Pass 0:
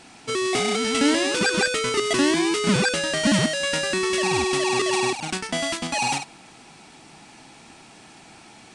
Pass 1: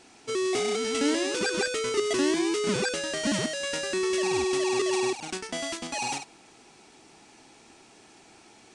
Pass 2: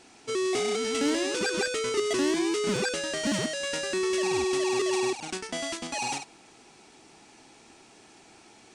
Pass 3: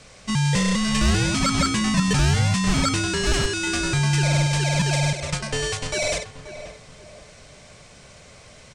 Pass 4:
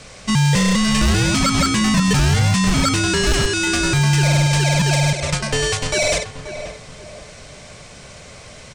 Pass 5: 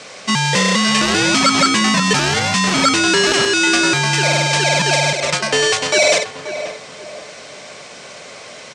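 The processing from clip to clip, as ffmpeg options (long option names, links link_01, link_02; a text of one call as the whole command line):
ffmpeg -i in.wav -af "equalizer=frequency=160:width_type=o:width=0.67:gain=-5,equalizer=frequency=400:width_type=o:width=0.67:gain=7,equalizer=frequency=6300:width_type=o:width=0.67:gain=4,volume=-8dB" out.wav
ffmpeg -i in.wav -af "asoftclip=type=tanh:threshold=-16dB" out.wav
ffmpeg -i in.wav -filter_complex "[0:a]afreqshift=-230,asplit=2[link_01][link_02];[link_02]adelay=532,lowpass=frequency=1600:poles=1,volume=-11dB,asplit=2[link_03][link_04];[link_04]adelay=532,lowpass=frequency=1600:poles=1,volume=0.37,asplit=2[link_05][link_06];[link_06]adelay=532,lowpass=frequency=1600:poles=1,volume=0.37,asplit=2[link_07][link_08];[link_08]adelay=532,lowpass=frequency=1600:poles=1,volume=0.37[link_09];[link_01][link_03][link_05][link_07][link_09]amix=inputs=5:normalize=0,volume=7dB" out.wav
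ffmpeg -i in.wav -filter_complex "[0:a]asplit=2[link_01][link_02];[link_02]alimiter=limit=-17dB:level=0:latency=1:release=204,volume=2.5dB[link_03];[link_01][link_03]amix=inputs=2:normalize=0,volume=10.5dB,asoftclip=hard,volume=-10.5dB" out.wav
ffmpeg -i in.wav -af "highpass=300,lowpass=7200,volume=6dB" out.wav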